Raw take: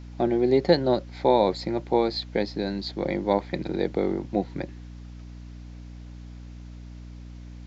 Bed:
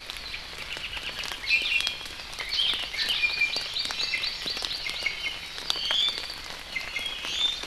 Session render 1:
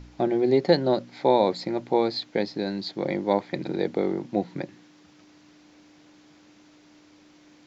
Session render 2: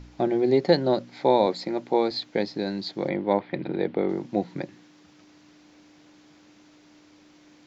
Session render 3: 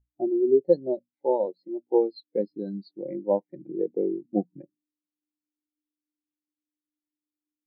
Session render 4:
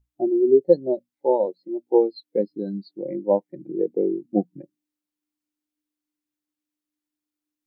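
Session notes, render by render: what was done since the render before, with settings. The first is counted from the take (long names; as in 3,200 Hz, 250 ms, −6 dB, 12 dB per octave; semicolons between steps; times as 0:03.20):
hum removal 60 Hz, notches 4
0:01.46–0:02.11: high-pass filter 170 Hz; 0:03.09–0:04.09: low-pass filter 3,500 Hz 24 dB per octave
speech leveller within 3 dB 0.5 s; every bin expanded away from the loudest bin 2.5 to 1
level +4 dB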